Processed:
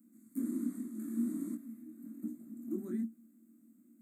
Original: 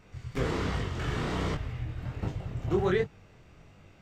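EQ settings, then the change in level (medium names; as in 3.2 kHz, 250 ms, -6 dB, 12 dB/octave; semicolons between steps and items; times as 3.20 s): rippled Chebyshev high-pass 220 Hz, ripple 6 dB; inverse Chebyshev band-stop 420–5700 Hz, stop band 40 dB; +16.0 dB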